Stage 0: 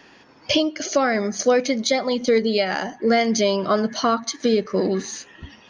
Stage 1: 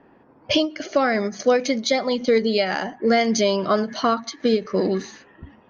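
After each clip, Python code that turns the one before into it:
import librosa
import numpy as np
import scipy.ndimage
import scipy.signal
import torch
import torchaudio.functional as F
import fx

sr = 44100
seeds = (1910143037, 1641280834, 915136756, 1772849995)

y = fx.env_lowpass(x, sr, base_hz=880.0, full_db=-16.0)
y = fx.end_taper(y, sr, db_per_s=250.0)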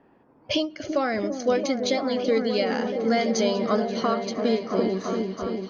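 y = fx.peak_eq(x, sr, hz=1700.0, db=-2.0, octaves=0.77)
y = fx.echo_opening(y, sr, ms=337, hz=400, octaves=1, feedback_pct=70, wet_db=-3)
y = y * 10.0 ** (-5.0 / 20.0)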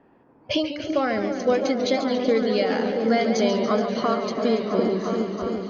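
y = fx.air_absorb(x, sr, metres=75.0)
y = fx.echo_warbled(y, sr, ms=142, feedback_pct=67, rate_hz=2.8, cents=131, wet_db=-10.0)
y = y * 10.0 ** (1.5 / 20.0)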